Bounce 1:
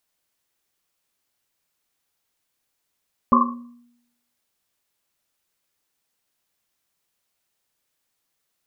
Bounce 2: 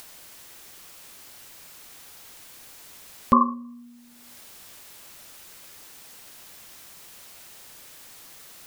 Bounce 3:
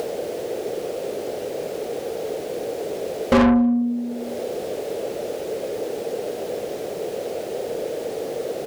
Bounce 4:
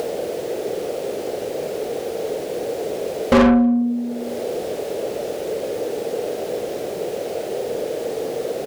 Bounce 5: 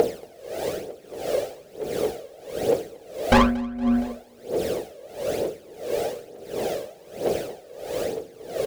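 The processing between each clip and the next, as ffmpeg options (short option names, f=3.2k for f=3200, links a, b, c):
-af "acompressor=mode=upward:threshold=-23dB:ratio=2.5"
-filter_complex "[0:a]firequalizer=gain_entry='entry(290,0);entry(450,12);entry(1000,-23)':delay=0.05:min_phase=1,asplit=2[a][b];[b]highpass=f=720:p=1,volume=41dB,asoftclip=type=tanh:threshold=-7.5dB[c];[a][c]amix=inputs=2:normalize=0,lowpass=f=2.8k:p=1,volume=-6dB,asplit=2[d][e];[e]adelay=233.2,volume=-28dB,highshelf=f=4k:g=-5.25[f];[d][f]amix=inputs=2:normalize=0"
-filter_complex "[0:a]asplit=2[a][b];[b]adelay=47,volume=-9.5dB[c];[a][c]amix=inputs=2:normalize=0,volume=2dB"
-filter_complex "[0:a]aphaser=in_gain=1:out_gain=1:delay=1.9:decay=0.67:speed=1.1:type=triangular,asplit=2[a][b];[b]aecho=0:1:232|464|696|928:0.596|0.185|0.0572|0.0177[c];[a][c]amix=inputs=2:normalize=0,aeval=exprs='val(0)*pow(10,-22*(0.5-0.5*cos(2*PI*1.5*n/s))/20)':c=same,volume=-1dB"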